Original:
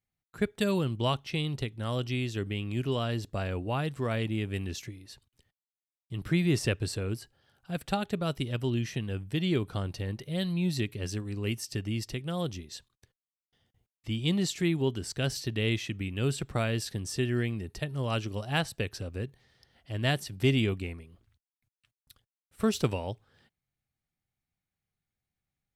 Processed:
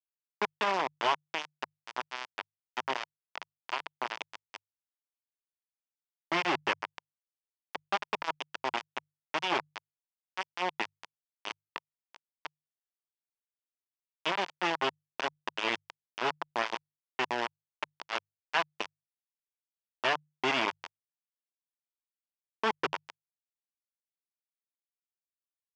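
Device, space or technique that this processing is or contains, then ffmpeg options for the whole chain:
hand-held game console: -af "acrusher=bits=3:mix=0:aa=0.000001,highpass=480,equalizer=f=500:t=q:w=4:g=-5,equalizer=f=960:t=q:w=4:g=6,equalizer=f=4000:t=q:w=4:g=-9,lowpass=f=4500:w=0.5412,lowpass=f=4500:w=1.3066,bandreject=f=50:t=h:w=6,bandreject=f=100:t=h:w=6,bandreject=f=150:t=h:w=6"

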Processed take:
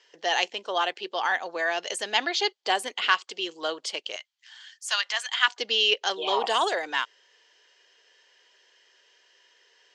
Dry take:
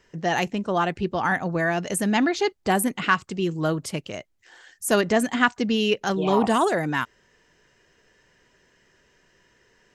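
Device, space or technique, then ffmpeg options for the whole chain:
phone speaker on a table: -filter_complex "[0:a]asettb=1/sr,asplit=3[s0][s1][s2];[s0]atrim=end=4.164[s3];[s1]atrim=start=4.16:end=5.48,asetpts=PTS-STARTPTS,afade=t=in:d=0.004:c=qsin,afade=t=out:st=1.316:d=0.004:c=qsin,highpass=f=1000:w=0.5412,highpass=f=1000:w=1.3066[s4];[s2]atrim=start=5.476[s5];[s3][s4]acrossfade=d=0.004:c1=hsin:c2=qsin[s6];[s6][s5]acrossfade=d=0.004:c1=qsin:c2=hsin,highpass=f=460:w=0.5412,highpass=f=460:w=1.3066,equalizer=f=620:t=q:w=4:g=-3,equalizer=f=1300:t=q:w=4:g=-3,equalizer=f=3200:t=q:w=4:g=10,equalizer=f=4500:t=q:w=4:g=6,lowpass=f=6900:w=0.5412,lowpass=f=6900:w=1.3066,highshelf=f=5200:g=5.5,volume=0.841"

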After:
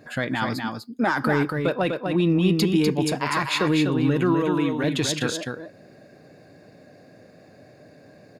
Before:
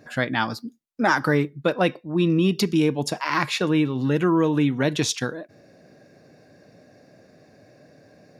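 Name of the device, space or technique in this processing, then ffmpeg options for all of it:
soft clipper into limiter: -filter_complex "[0:a]asoftclip=type=tanh:threshold=0.473,alimiter=limit=0.188:level=0:latency=1:release=29,bandreject=f=5700:w=5.5,asettb=1/sr,asplit=3[s0][s1][s2];[s0]atrim=end=4.344[s3];[s1]atrim=start=4.34:end=4.84,asetpts=PTS-STARTPTS,afade=t=in:d=0.004:c=qsin,afade=t=out:st=0.496:d=0.004:c=qsin,highpass=f=290:p=1[s4];[s2]atrim=start=4.836[s5];[s3][s4]acrossfade=d=0.004:c1=hsin:c2=qsin[s6];[s6][s5]acrossfade=d=0.004:c1=qsin:c2=hsin,aecho=1:1:248:0.562,volume=1.19"

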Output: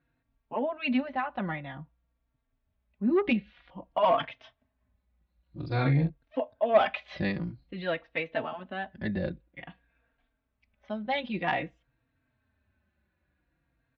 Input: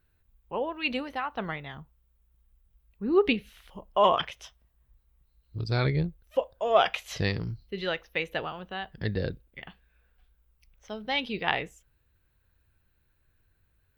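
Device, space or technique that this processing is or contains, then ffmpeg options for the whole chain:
barber-pole flanger into a guitar amplifier: -filter_complex "[0:a]lowpass=5100,asplit=3[s0][s1][s2];[s0]afade=t=out:st=5.59:d=0.02[s3];[s1]asplit=2[s4][s5];[s5]adelay=43,volume=0.562[s6];[s4][s6]amix=inputs=2:normalize=0,afade=t=in:st=5.59:d=0.02,afade=t=out:st=6.08:d=0.02[s7];[s2]afade=t=in:st=6.08:d=0.02[s8];[s3][s7][s8]amix=inputs=3:normalize=0,asplit=2[s9][s10];[s10]adelay=3.8,afreqshift=-0.51[s11];[s9][s11]amix=inputs=2:normalize=1,asoftclip=type=tanh:threshold=0.106,highpass=81,equalizer=f=100:t=q:w=4:g=-7,equalizer=f=260:t=q:w=4:g=9,equalizer=f=430:t=q:w=4:g=-8,equalizer=f=620:t=q:w=4:g=5,equalizer=f=1300:t=q:w=4:g=-3,equalizer=f=3000:t=q:w=4:g=-6,lowpass=f=3600:w=0.5412,lowpass=f=3600:w=1.3066,volume=1.5"

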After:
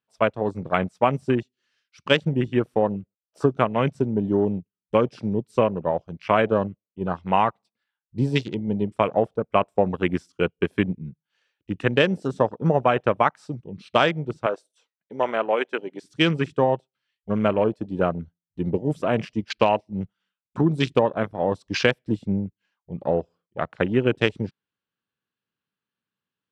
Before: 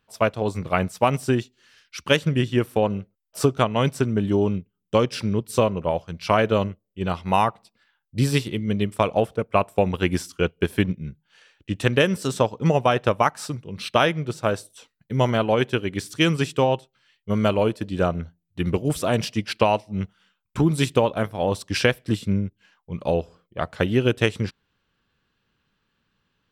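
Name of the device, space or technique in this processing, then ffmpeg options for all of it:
over-cleaned archive recording: -filter_complex "[0:a]asettb=1/sr,asplit=3[s0][s1][s2];[s0]atrim=end=14.464[s3];[s1]atrim=start=14.46:end=16.02,asetpts=PTS-STARTPTS,afade=t=in:d=0.004:c=qsin,afade=t=out:st=1.556:d=0.004:c=qsin,highpass=420[s4];[s2]atrim=start=16.016[s5];[s3][s4]acrossfade=d=0.004:c1=hsin:c2=qsin[s6];[s6][s5]acrossfade=d=0.004:c1=qsin:c2=hsin,highpass=130,lowpass=7300,afwtdn=0.0251"

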